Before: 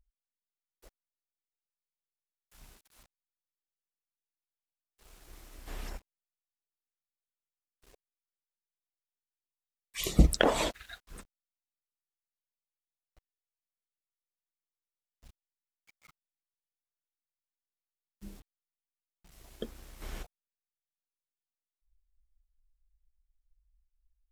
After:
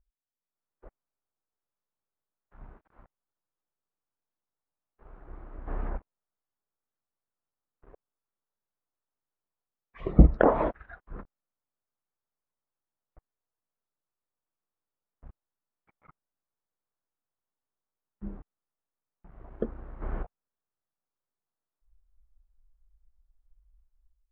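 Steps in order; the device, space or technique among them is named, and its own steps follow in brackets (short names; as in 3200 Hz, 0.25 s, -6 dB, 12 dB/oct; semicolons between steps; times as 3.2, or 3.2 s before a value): action camera in a waterproof case (LPF 1400 Hz 24 dB/oct; AGC gain up to 10.5 dB; gain -2 dB; AAC 48 kbps 48000 Hz)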